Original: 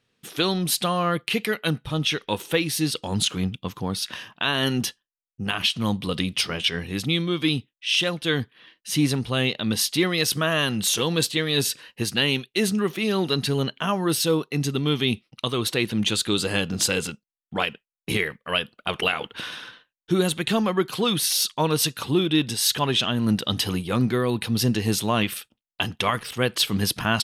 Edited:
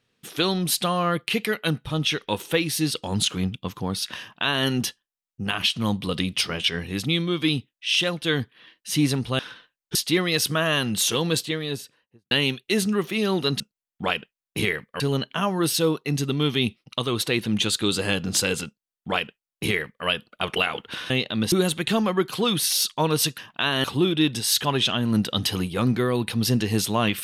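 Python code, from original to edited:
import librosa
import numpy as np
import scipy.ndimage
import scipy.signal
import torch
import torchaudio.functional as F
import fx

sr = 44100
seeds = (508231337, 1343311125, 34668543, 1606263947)

y = fx.studio_fade_out(x, sr, start_s=11.04, length_s=1.13)
y = fx.edit(y, sr, fx.duplicate(start_s=4.2, length_s=0.46, to_s=21.98),
    fx.swap(start_s=9.39, length_s=0.42, other_s=19.56, other_length_s=0.56),
    fx.duplicate(start_s=17.12, length_s=1.4, to_s=13.46), tone=tone)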